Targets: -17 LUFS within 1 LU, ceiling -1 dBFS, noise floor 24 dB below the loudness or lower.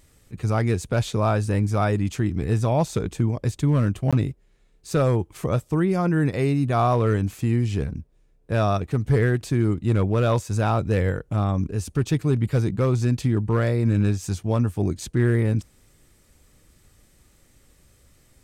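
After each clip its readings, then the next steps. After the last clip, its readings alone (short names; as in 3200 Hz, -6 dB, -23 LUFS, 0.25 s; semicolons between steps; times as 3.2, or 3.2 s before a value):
clipped 0.6%; flat tops at -12.0 dBFS; dropouts 1; longest dropout 16 ms; loudness -23.0 LUFS; peak -12.0 dBFS; loudness target -17.0 LUFS
-> clip repair -12 dBFS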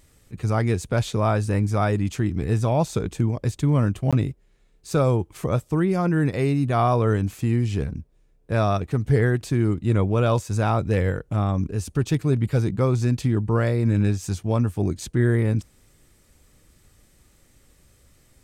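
clipped 0.0%; dropouts 1; longest dropout 16 ms
-> interpolate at 4.11, 16 ms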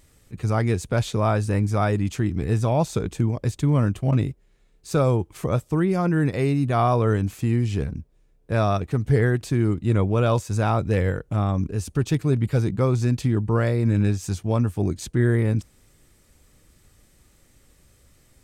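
dropouts 0; loudness -23.0 LUFS; peak -8.0 dBFS; loudness target -17.0 LUFS
-> gain +6 dB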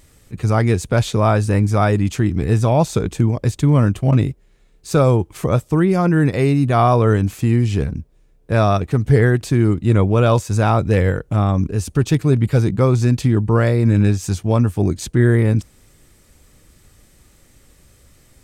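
loudness -17.0 LUFS; peak -2.0 dBFS; noise floor -53 dBFS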